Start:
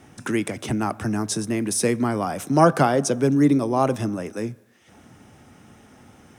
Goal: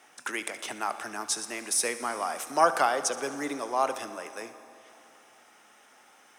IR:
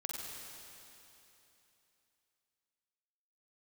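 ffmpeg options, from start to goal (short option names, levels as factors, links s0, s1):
-filter_complex "[0:a]highpass=770,asplit=2[s0][s1];[1:a]atrim=start_sample=2205,adelay=72[s2];[s1][s2]afir=irnorm=-1:irlink=0,volume=0.251[s3];[s0][s3]amix=inputs=2:normalize=0,volume=0.841"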